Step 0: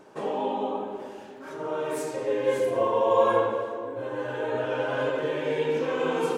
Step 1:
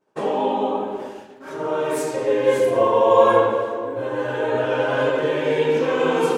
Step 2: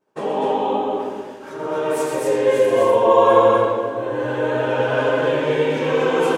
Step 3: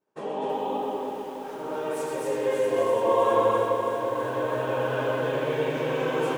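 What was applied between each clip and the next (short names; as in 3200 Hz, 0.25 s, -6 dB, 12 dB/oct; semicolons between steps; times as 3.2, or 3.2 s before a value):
expander -37 dBFS; gain +7 dB
loudspeakers at several distances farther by 43 m -6 dB, 86 m -2 dB; gain -1 dB
lo-fi delay 0.328 s, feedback 80%, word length 7-bit, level -7.5 dB; gain -9 dB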